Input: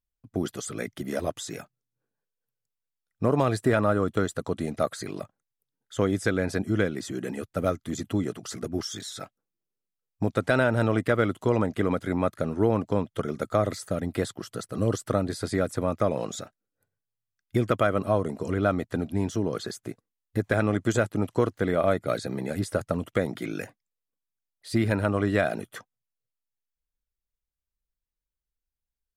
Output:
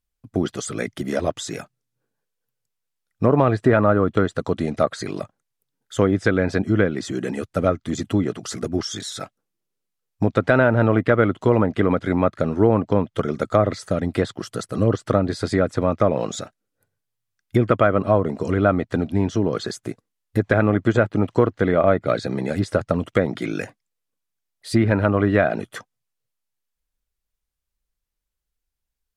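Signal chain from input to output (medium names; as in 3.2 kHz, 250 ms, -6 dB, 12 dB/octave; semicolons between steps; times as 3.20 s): low-pass that closes with the level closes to 2.2 kHz, closed at -19.5 dBFS; short-mantissa float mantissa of 8-bit; trim +6.5 dB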